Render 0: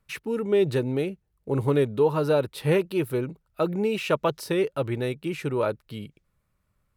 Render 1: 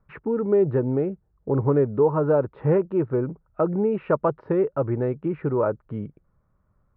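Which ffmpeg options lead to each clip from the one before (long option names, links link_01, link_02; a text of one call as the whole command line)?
ffmpeg -i in.wav -filter_complex "[0:a]lowpass=frequency=1400:width=0.5412,lowpass=frequency=1400:width=1.3066,asplit=2[link_01][link_02];[link_02]acompressor=threshold=-31dB:ratio=6,volume=0.5dB[link_03];[link_01][link_03]amix=inputs=2:normalize=0" out.wav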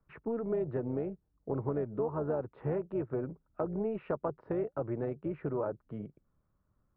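ffmpeg -i in.wav -filter_complex "[0:a]tremolo=f=230:d=0.519,acrossover=split=110|1200[link_01][link_02][link_03];[link_01]acompressor=threshold=-49dB:ratio=4[link_04];[link_02]acompressor=threshold=-23dB:ratio=4[link_05];[link_03]acompressor=threshold=-45dB:ratio=4[link_06];[link_04][link_05][link_06]amix=inputs=3:normalize=0,volume=-6.5dB" out.wav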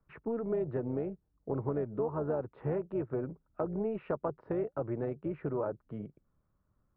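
ffmpeg -i in.wav -af anull out.wav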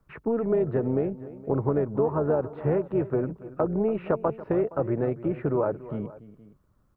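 ffmpeg -i in.wav -af "aecho=1:1:285|467:0.15|0.106,volume=8.5dB" out.wav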